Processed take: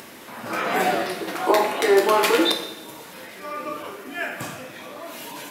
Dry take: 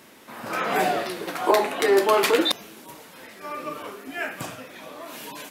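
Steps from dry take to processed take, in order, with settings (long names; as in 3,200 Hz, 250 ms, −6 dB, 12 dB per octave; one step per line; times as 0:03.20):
upward compression, threshold −36 dBFS
coupled-rooms reverb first 0.82 s, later 2.3 s, DRR 3 dB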